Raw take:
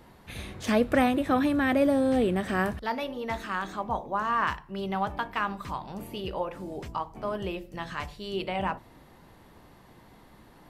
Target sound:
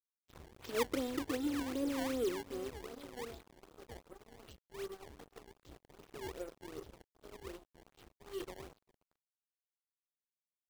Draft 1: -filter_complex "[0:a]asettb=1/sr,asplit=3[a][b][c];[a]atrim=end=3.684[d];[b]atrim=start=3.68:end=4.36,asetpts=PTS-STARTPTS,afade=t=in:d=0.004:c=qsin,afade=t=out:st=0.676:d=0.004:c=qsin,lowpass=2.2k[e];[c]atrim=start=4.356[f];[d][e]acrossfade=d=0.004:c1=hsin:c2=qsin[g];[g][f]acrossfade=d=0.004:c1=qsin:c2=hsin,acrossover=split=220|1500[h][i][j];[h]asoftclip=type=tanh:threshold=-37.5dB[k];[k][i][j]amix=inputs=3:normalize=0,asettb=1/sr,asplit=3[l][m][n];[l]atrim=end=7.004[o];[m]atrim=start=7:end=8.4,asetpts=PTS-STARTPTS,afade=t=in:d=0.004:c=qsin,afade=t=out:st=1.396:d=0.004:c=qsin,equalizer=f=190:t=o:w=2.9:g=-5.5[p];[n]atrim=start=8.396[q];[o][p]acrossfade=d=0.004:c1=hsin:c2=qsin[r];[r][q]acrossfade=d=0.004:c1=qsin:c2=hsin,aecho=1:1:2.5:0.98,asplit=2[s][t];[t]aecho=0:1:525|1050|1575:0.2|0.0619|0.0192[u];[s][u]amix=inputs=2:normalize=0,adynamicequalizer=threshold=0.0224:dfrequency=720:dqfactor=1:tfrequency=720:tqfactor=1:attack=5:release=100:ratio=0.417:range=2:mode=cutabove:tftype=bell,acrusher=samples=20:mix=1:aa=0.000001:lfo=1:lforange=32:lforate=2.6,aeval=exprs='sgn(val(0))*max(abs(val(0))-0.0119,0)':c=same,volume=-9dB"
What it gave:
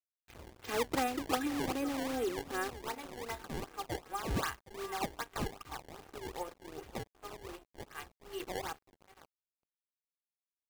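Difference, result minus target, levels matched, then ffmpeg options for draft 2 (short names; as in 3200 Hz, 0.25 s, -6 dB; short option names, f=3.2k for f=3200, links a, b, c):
1000 Hz band +8.5 dB
-filter_complex "[0:a]asettb=1/sr,asplit=3[a][b][c];[a]atrim=end=3.684[d];[b]atrim=start=3.68:end=4.36,asetpts=PTS-STARTPTS,afade=t=in:d=0.004:c=qsin,afade=t=out:st=0.676:d=0.004:c=qsin,lowpass=2.2k[e];[c]atrim=start=4.356[f];[d][e]acrossfade=d=0.004:c1=hsin:c2=qsin[g];[g][f]acrossfade=d=0.004:c1=qsin:c2=hsin,acrossover=split=220|1500[h][i][j];[h]asoftclip=type=tanh:threshold=-37.5dB[k];[k][i][j]amix=inputs=3:normalize=0,asettb=1/sr,asplit=3[l][m][n];[l]atrim=end=7.004[o];[m]atrim=start=7:end=8.4,asetpts=PTS-STARTPTS,afade=t=in:d=0.004:c=qsin,afade=t=out:st=1.396:d=0.004:c=qsin,equalizer=f=190:t=o:w=2.9:g=-5.5[p];[n]atrim=start=8.396[q];[o][p]acrossfade=d=0.004:c1=hsin:c2=qsin[r];[r][q]acrossfade=d=0.004:c1=qsin:c2=hsin,aecho=1:1:2.5:0.98,asplit=2[s][t];[t]aecho=0:1:525|1050|1575:0.2|0.0619|0.0192[u];[s][u]amix=inputs=2:normalize=0,adynamicequalizer=threshold=0.0224:dfrequency=720:dqfactor=1:tfrequency=720:tqfactor=1:attack=5:release=100:ratio=0.417:range=2:mode=cutabove:tftype=bell,asuperstop=centerf=1400:order=12:qfactor=0.56,acrusher=samples=20:mix=1:aa=0.000001:lfo=1:lforange=32:lforate=2.6,aeval=exprs='sgn(val(0))*max(abs(val(0))-0.0119,0)':c=same,volume=-9dB"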